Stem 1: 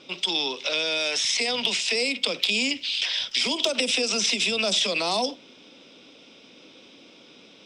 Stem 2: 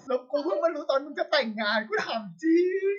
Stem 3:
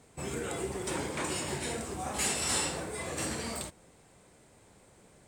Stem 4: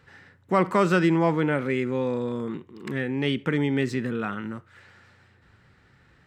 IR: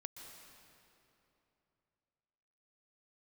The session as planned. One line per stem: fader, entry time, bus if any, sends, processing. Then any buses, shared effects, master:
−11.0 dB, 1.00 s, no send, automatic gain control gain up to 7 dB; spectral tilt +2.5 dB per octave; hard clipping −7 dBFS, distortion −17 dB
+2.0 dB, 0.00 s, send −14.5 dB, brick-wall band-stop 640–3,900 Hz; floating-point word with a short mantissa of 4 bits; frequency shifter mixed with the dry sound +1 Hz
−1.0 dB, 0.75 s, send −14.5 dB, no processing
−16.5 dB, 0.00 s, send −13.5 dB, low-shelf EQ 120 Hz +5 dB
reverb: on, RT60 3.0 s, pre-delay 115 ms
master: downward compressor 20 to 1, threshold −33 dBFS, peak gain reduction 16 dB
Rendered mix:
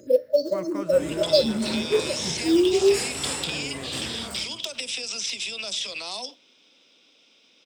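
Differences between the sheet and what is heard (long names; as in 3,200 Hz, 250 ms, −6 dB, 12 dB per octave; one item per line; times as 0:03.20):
stem 1: missing automatic gain control gain up to 7 dB
stem 2 +2.0 dB → +8.0 dB
master: missing downward compressor 20 to 1, threshold −33 dBFS, peak gain reduction 16 dB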